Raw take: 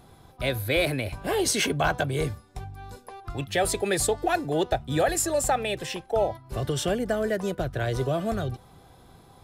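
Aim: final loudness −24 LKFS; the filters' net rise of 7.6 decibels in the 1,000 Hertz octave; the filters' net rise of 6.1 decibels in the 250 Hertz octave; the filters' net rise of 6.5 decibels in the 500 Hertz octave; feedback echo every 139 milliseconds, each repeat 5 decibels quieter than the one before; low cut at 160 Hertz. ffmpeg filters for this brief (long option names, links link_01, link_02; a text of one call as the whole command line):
ffmpeg -i in.wav -af "highpass=160,equalizer=frequency=250:width_type=o:gain=7.5,equalizer=frequency=500:width_type=o:gain=3.5,equalizer=frequency=1000:width_type=o:gain=9,aecho=1:1:139|278|417|556|695|834|973:0.562|0.315|0.176|0.0988|0.0553|0.031|0.0173,volume=-4dB" out.wav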